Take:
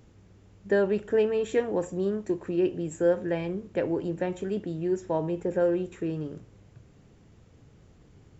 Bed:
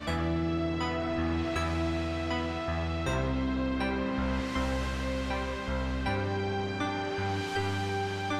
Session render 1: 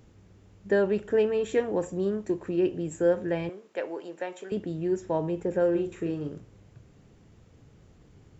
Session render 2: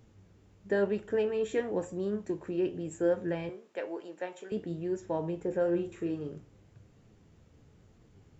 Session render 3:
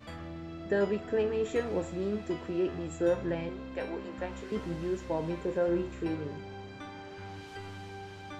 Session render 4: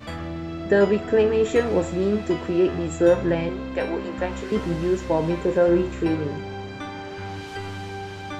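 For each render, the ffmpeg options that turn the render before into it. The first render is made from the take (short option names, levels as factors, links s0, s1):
-filter_complex "[0:a]asettb=1/sr,asplit=3[s0][s1][s2];[s0]atrim=end=3.494[s3];[s1]atrim=start=3.49:end=4.52,asetpts=PTS-STARTPTS,afade=t=in:d=0.004:c=qsin,afade=t=out:st=1.026:d=0.004:c=qsin,highpass=570[s4];[s2]atrim=start=4.516[s5];[s3][s4]acrossfade=d=0.004:c1=hsin:c2=qsin[s6];[s6][s5]acrossfade=d=0.004:c1=qsin:c2=hsin,asettb=1/sr,asplit=3[s7][s8][s9];[s7]atrim=end=5.714[s10];[s8]atrim=start=5.71:end=6.29,asetpts=PTS-STARTPTS,afade=t=in:d=0.004:c=qsin,afade=t=out:st=0.576:d=0.004:c=qsin,asplit=2[s11][s12];[s12]adelay=41,volume=0.447[s13];[s11][s13]amix=inputs=2:normalize=0,atrim=end_sample=25578[s14];[s9]atrim=start=6.286[s15];[s10][s14]acrossfade=d=0.004:c1=hsin:c2=qsin[s16];[s16][s15]acrossfade=d=0.004:c1=qsin:c2=hsin"
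-af "flanger=delay=8.7:depth=5.1:regen=64:speed=1:shape=sinusoidal"
-filter_complex "[1:a]volume=0.237[s0];[0:a][s0]amix=inputs=2:normalize=0"
-af "volume=3.35"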